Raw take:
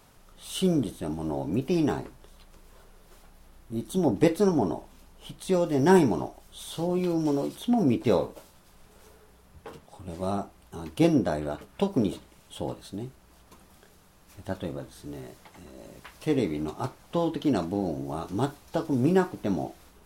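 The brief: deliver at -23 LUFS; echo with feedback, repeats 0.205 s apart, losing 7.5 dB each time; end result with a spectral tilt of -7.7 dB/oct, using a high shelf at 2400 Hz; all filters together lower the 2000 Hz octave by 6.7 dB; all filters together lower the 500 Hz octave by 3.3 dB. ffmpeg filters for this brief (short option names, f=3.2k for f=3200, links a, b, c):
-af "equalizer=f=500:t=o:g=-4,equalizer=f=2k:t=o:g=-6.5,highshelf=f=2.4k:g=-5.5,aecho=1:1:205|410|615|820|1025:0.422|0.177|0.0744|0.0312|0.0131,volume=6dB"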